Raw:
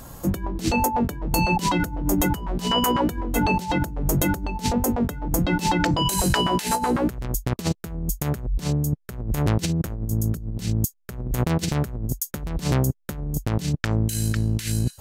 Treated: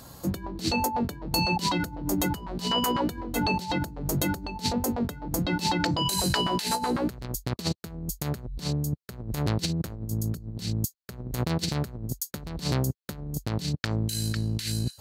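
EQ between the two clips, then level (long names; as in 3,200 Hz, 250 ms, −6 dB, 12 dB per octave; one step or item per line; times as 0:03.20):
high-pass filter 65 Hz
parametric band 4,300 Hz +10.5 dB 0.44 octaves
−5.0 dB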